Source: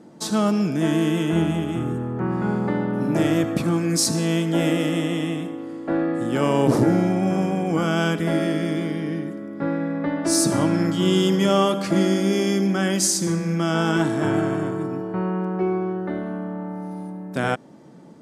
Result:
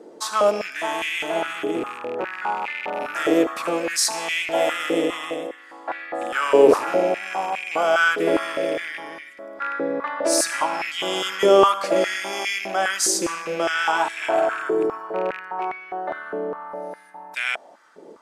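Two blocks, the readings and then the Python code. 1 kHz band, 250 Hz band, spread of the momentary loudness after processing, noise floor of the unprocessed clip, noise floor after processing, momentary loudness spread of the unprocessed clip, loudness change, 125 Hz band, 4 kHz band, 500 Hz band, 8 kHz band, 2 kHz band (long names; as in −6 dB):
+5.5 dB, −9.0 dB, 13 LU, −35 dBFS, −46 dBFS, 9 LU, 0.0 dB, −22.0 dB, +1.5 dB, +3.0 dB, 0.0 dB, +6.5 dB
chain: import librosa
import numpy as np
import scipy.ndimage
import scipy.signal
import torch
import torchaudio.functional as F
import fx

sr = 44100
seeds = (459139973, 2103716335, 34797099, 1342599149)

y = fx.rattle_buzz(x, sr, strikes_db=-24.0, level_db=-27.0)
y = fx.filter_held_highpass(y, sr, hz=4.9, low_hz=430.0, high_hz=2200.0)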